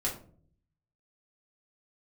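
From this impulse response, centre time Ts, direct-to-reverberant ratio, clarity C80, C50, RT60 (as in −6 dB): 22 ms, −5.0 dB, 13.5 dB, 8.5 dB, 0.50 s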